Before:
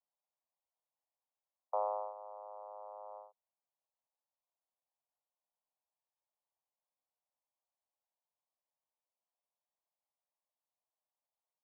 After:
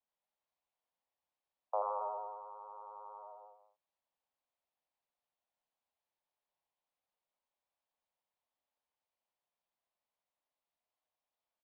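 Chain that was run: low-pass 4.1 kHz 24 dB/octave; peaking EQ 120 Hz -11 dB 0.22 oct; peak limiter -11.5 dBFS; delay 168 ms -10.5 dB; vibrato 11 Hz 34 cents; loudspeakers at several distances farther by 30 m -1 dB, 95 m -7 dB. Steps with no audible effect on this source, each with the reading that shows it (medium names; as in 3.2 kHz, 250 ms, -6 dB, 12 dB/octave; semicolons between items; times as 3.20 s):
low-pass 4.1 kHz: input has nothing above 1.4 kHz; peaking EQ 120 Hz: input has nothing below 400 Hz; peak limiter -11.5 dBFS: peak at its input -24.0 dBFS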